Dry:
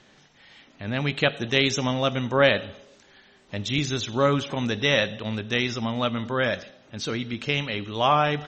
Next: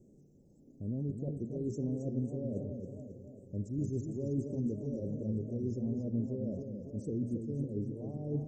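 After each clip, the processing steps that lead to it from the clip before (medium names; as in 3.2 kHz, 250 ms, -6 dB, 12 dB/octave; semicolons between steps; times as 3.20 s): reverse; compression, threshold -30 dBFS, peak gain reduction 15.5 dB; reverse; inverse Chebyshev band-stop 1.3–3.5 kHz, stop band 70 dB; modulated delay 274 ms, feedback 57%, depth 122 cents, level -7 dB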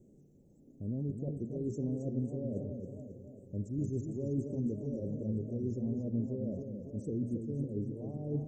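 peaking EQ 4.8 kHz -8 dB 0.45 oct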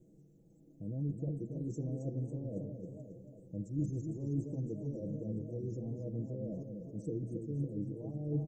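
comb 6.2 ms, depth 81%; trim -3.5 dB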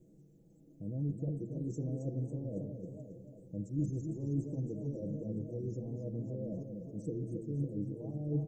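de-hum 112.3 Hz, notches 36; trim +1 dB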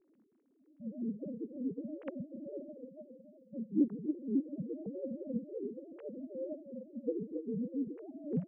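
formants replaced by sine waves; wow and flutter 23 cents; upward expansion 1.5:1, over -46 dBFS; trim +3 dB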